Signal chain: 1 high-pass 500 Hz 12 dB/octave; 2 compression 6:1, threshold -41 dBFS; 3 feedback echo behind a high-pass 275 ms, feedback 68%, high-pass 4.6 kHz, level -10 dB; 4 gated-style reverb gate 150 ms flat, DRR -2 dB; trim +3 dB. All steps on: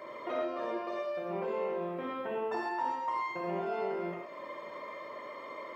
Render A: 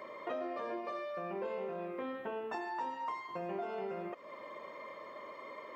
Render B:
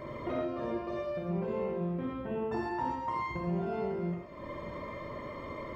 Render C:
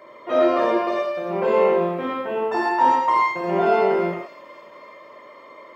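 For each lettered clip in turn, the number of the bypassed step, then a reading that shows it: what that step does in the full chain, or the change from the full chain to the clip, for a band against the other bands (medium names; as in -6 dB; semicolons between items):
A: 4, loudness change -5.0 LU; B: 1, 125 Hz band +14.5 dB; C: 2, mean gain reduction 9.0 dB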